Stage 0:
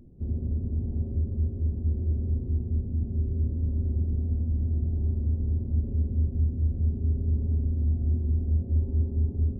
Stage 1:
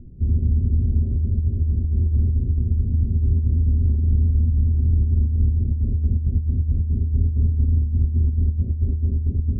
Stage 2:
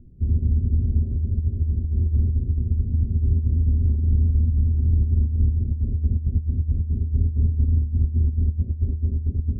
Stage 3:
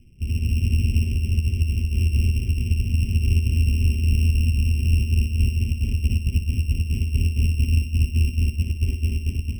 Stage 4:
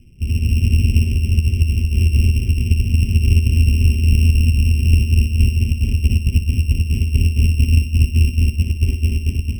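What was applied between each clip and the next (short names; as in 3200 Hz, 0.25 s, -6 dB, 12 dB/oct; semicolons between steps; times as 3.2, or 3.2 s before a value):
Bessel low-pass 510 Hz, order 8; low shelf 190 Hz +11 dB; negative-ratio compressor -17 dBFS, ratio -0.5
upward expander 1.5:1, over -27 dBFS
sample sorter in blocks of 16 samples; flutter echo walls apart 10.2 m, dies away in 0.37 s; AGC gain up to 5 dB; gain -4 dB
added harmonics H 3 -24 dB, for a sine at -8 dBFS; gain +7 dB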